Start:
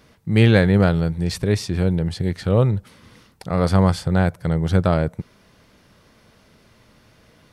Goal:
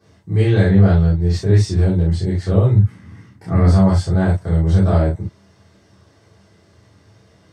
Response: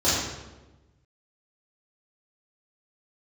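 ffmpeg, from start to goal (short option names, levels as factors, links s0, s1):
-filter_complex "[0:a]asettb=1/sr,asplit=3[s0][s1][s2];[s0]atrim=end=0.684[s3];[s1]atrim=start=0.68:end=1.51,asetpts=PTS-STARTPTS,afade=t=in:d=0.004:c=qsin,afade=t=out:st=0.826:d=0.004:c=qsin,equalizer=f=9300:t=o:w=0.66:g=-10[s4];[s2]atrim=start=1.506[s5];[s3][s4]acrossfade=d=0.004:c1=hsin:c2=qsin[s6];[s6][s5]acrossfade=d=0.004:c1=qsin:c2=hsin,alimiter=limit=0.376:level=0:latency=1,asettb=1/sr,asplit=3[s7][s8][s9];[s7]atrim=end=2.764[s10];[s8]atrim=start=2.76:end=3.65,asetpts=PTS-STARTPTS,afade=t=in:d=0.004:c=qsin,afade=t=out:st=0.886:d=0.004:c=qsin,equalizer=f=125:t=o:w=1:g=8,equalizer=f=250:t=o:w=1:g=8,equalizer=f=500:t=o:w=1:g=-6,equalizer=f=2000:t=o:w=1:g=6,equalizer=f=4000:t=o:w=1:g=-8,equalizer=f=8000:t=o:w=1:g=-5[s11];[s9]atrim=start=3.646[s12];[s10][s11]acrossfade=d=0.004:c1=hsin:c2=qsin[s13];[s13][s12]acrossfade=d=0.004:c1=qsin:c2=hsin,asettb=1/sr,asplit=3[s14][s15][s16];[s14]atrim=end=4.404[s17];[s15]atrim=start=4.4:end=4.87,asetpts=PTS-STARTPTS,afade=t=in:d=0.004:c=qsin,afade=t=out:st=0.466:d=0.004:c=qsin,acrossover=split=350|3000[s18][s19][s20];[s19]acompressor=threshold=0.0501:ratio=6[s21];[s18][s21][s20]amix=inputs=3:normalize=0[s22];[s16]atrim=start=4.866[s23];[s17][s22]acrossfade=d=0.004:c1=hsin:c2=qsin[s24];[s24][s23]acrossfade=d=0.004:c1=qsin:c2=hsin[s25];[1:a]atrim=start_sample=2205,atrim=end_sample=4410,asetrate=52920,aresample=44100[s26];[s25][s26]afir=irnorm=-1:irlink=0,volume=0.188"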